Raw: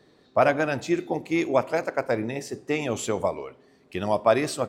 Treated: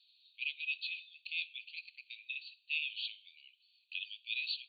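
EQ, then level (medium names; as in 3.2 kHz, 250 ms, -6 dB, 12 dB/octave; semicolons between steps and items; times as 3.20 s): Chebyshev high-pass 2.5 kHz, order 8; brick-wall FIR low-pass 4.6 kHz; +2.5 dB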